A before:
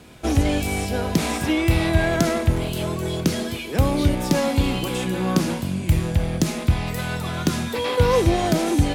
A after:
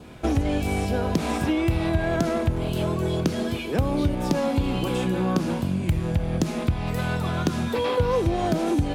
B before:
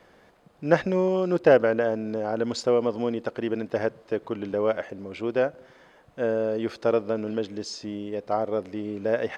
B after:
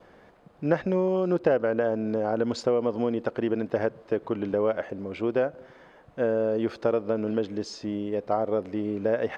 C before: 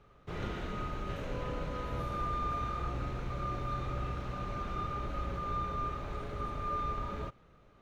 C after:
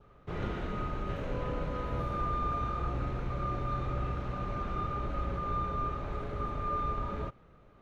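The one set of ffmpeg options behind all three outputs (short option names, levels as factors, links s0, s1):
-af "highshelf=f=3200:g=-9.5,acompressor=threshold=0.0631:ratio=3,adynamicequalizer=threshold=0.00251:dfrequency=2000:dqfactor=4:tfrequency=2000:tqfactor=4:attack=5:release=100:ratio=0.375:range=2:mode=cutabove:tftype=bell,volume=1.41"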